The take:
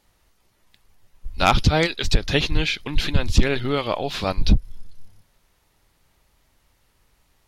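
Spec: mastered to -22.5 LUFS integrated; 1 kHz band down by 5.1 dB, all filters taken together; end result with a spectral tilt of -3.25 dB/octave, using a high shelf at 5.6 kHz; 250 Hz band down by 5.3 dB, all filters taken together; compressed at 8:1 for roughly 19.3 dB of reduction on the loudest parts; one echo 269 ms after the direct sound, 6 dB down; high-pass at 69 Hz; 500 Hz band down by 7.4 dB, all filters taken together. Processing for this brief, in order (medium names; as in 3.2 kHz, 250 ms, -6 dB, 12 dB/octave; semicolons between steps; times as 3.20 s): high-pass 69 Hz; peaking EQ 250 Hz -5.5 dB; peaking EQ 500 Hz -6.5 dB; peaking EQ 1 kHz -5 dB; treble shelf 5.6 kHz +8 dB; compression 8:1, threshold -36 dBFS; delay 269 ms -6 dB; trim +16 dB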